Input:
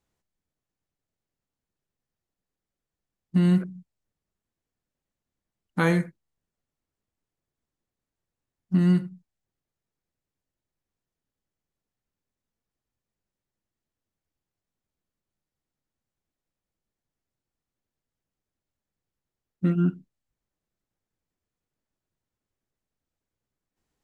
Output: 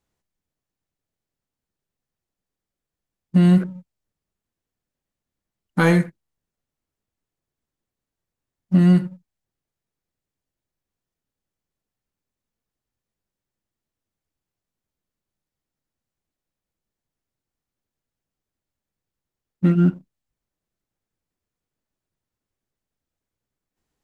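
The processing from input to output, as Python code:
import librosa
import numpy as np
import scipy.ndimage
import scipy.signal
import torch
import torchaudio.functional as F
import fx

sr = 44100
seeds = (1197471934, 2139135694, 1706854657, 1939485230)

y = fx.leveller(x, sr, passes=1)
y = y * librosa.db_to_amplitude(3.0)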